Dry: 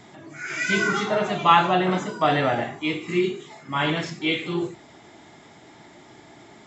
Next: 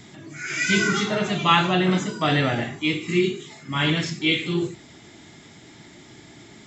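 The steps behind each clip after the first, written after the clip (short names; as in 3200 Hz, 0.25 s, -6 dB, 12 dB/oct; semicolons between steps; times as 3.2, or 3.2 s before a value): bell 790 Hz -12 dB 2.1 oct; gain +6.5 dB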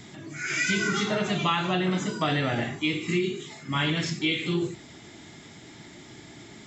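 compressor 6:1, threshold -22 dBFS, peak gain reduction 9.5 dB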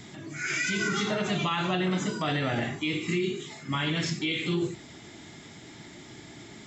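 limiter -19 dBFS, peak gain reduction 7 dB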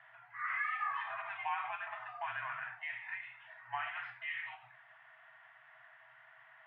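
FFT band-reject 140–890 Hz; mistuned SSB -260 Hz 270–2500 Hz; gain -5 dB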